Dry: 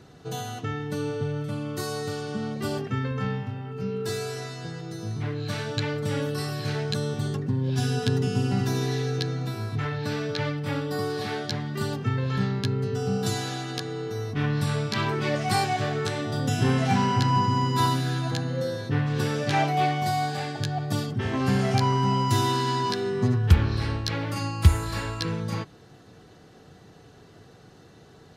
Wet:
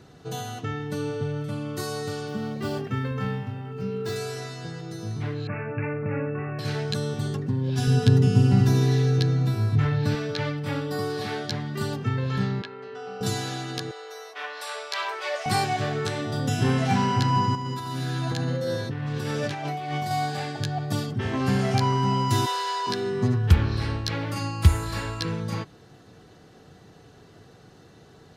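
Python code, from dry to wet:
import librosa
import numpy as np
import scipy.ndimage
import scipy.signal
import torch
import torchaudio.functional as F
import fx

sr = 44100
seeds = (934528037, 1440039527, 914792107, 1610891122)

y = fx.median_filter(x, sr, points=5, at=(2.28, 4.16))
y = fx.cheby1_lowpass(y, sr, hz=2700.0, order=10, at=(5.47, 6.59))
y = fx.low_shelf(y, sr, hz=190.0, db=11.5, at=(7.87, 10.15))
y = fx.bandpass_edges(y, sr, low_hz=630.0, high_hz=2700.0, at=(12.62, 13.21))
y = fx.steep_highpass(y, sr, hz=510.0, slope=36, at=(13.91, 15.46))
y = fx.over_compress(y, sr, threshold_db=-29.0, ratio=-1.0, at=(17.55, 20.11))
y = fx.steep_highpass(y, sr, hz=420.0, slope=72, at=(22.45, 22.86), fade=0.02)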